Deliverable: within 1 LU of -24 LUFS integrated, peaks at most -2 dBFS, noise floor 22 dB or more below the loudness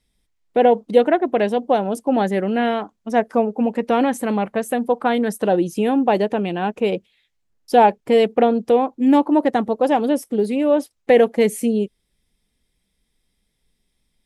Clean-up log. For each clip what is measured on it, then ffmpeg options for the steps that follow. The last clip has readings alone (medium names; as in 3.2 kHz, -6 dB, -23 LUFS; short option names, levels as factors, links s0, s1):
loudness -19.0 LUFS; peak level -2.0 dBFS; loudness target -24.0 LUFS
-> -af "volume=0.562"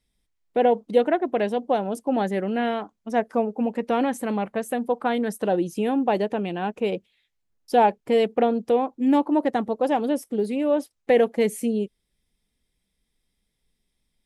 loudness -24.0 LUFS; peak level -7.0 dBFS; noise floor -77 dBFS